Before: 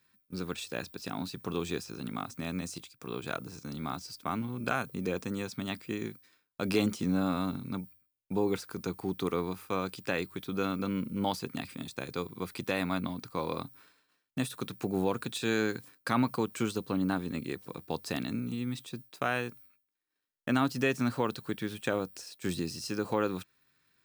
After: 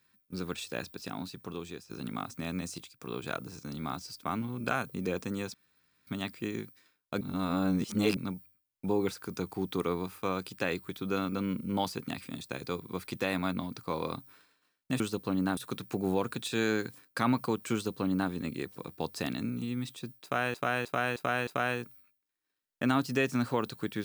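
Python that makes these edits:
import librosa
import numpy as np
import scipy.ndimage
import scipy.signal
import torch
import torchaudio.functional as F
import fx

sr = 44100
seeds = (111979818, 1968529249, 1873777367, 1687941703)

y = fx.edit(x, sr, fx.fade_out_to(start_s=0.87, length_s=1.03, floor_db=-12.0),
    fx.insert_room_tone(at_s=5.54, length_s=0.53),
    fx.reverse_span(start_s=6.68, length_s=0.96),
    fx.duplicate(start_s=16.63, length_s=0.57, to_s=14.47),
    fx.repeat(start_s=19.13, length_s=0.31, count=5), tone=tone)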